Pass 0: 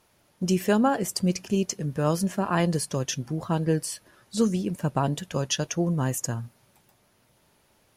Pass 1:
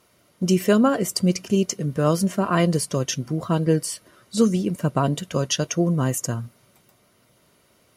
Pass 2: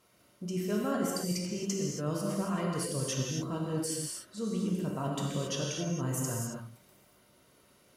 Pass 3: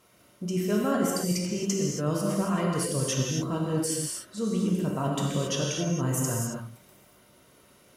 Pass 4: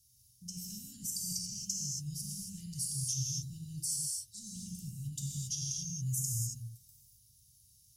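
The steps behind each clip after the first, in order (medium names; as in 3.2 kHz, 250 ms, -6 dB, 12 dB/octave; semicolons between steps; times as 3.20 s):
comb of notches 850 Hz; trim +5 dB
reverse; compression, threshold -26 dBFS, peak gain reduction 13.5 dB; reverse; gated-style reverb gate 300 ms flat, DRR -2.5 dB; trim -7.5 dB
peaking EQ 4.5 kHz -3.5 dB 0.21 oct; trim +5.5 dB
elliptic band-stop 110–5200 Hz, stop band 70 dB; in parallel at -1 dB: peak limiter -28.5 dBFS, peak gain reduction 10 dB; on the sum: trim -5.5 dB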